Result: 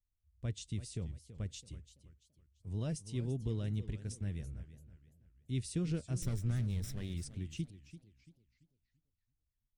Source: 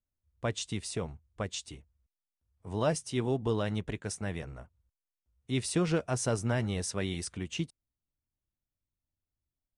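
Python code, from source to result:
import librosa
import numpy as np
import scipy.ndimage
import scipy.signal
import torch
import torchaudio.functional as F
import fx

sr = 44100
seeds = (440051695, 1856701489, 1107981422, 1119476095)

y = fx.lower_of_two(x, sr, delay_ms=0.54, at=(6.22, 7.14))
y = fx.tone_stack(y, sr, knobs='10-0-1')
y = fx.echo_warbled(y, sr, ms=334, feedback_pct=36, rate_hz=2.8, cents=174, wet_db=-14.0)
y = y * librosa.db_to_amplitude(10.5)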